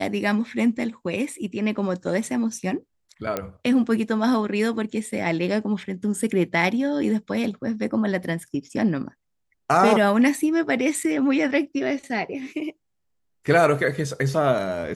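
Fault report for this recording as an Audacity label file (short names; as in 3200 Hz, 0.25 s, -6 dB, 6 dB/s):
3.370000	3.370000	pop -11 dBFS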